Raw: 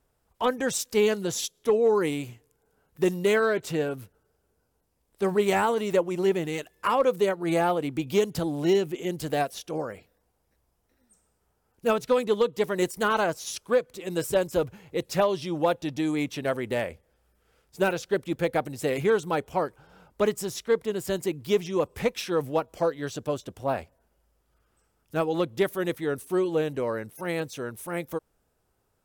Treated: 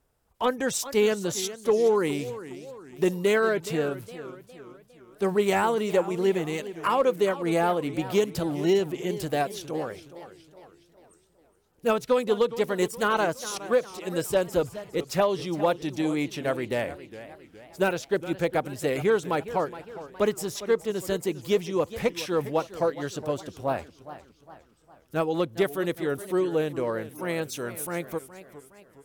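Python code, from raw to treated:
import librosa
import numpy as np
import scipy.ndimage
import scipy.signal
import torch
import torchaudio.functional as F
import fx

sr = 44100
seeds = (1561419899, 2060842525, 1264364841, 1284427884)

y = fx.high_shelf(x, sr, hz=4000.0, db=8.5, at=(27.43, 27.87))
y = fx.echo_warbled(y, sr, ms=412, feedback_pct=47, rate_hz=2.8, cents=176, wet_db=-14.5)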